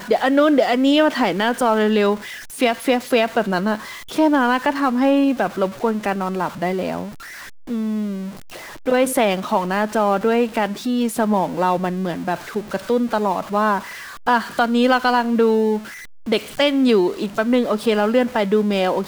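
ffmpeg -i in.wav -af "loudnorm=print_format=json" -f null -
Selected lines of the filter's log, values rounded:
"input_i" : "-19.1",
"input_tp" : "-4.3",
"input_lra" : "3.4",
"input_thresh" : "-29.4",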